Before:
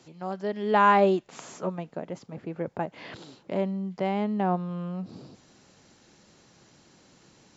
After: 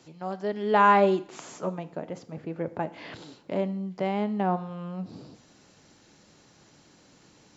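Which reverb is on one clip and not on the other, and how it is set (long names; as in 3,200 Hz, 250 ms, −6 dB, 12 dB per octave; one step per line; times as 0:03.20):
feedback delay network reverb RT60 0.64 s, low-frequency decay 1×, high-frequency decay 0.95×, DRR 12 dB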